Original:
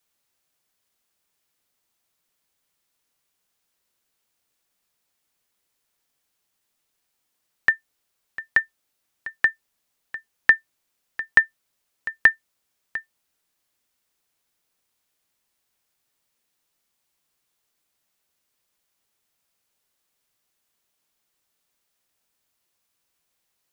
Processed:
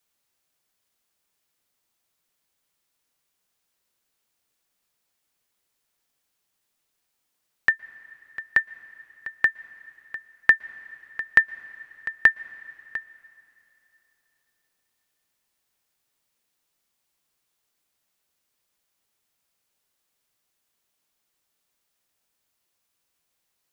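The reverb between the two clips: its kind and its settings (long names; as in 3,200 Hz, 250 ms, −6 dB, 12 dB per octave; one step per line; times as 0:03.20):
dense smooth reverb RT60 3.3 s, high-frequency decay 0.9×, pre-delay 105 ms, DRR 19.5 dB
level −1 dB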